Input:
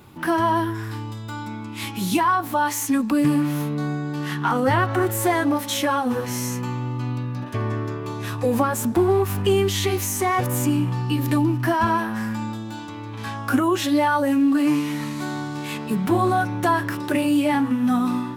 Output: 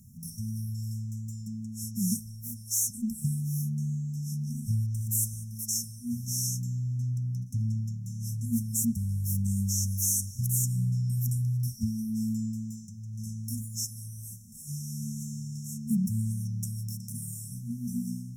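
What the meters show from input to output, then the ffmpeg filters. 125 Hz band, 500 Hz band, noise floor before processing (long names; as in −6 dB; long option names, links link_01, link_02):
−2.5 dB, below −40 dB, −33 dBFS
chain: -af "afftfilt=real='re*(1-between(b*sr/4096,240,5300))':imag='im*(1-between(b*sr/4096,240,5300))':win_size=4096:overlap=0.75,equalizer=frequency=6200:width=0.35:gain=3.5,volume=-2.5dB"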